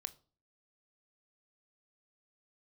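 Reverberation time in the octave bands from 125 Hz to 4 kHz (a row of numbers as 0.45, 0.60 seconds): 0.55, 0.55, 0.45, 0.40, 0.30, 0.30 seconds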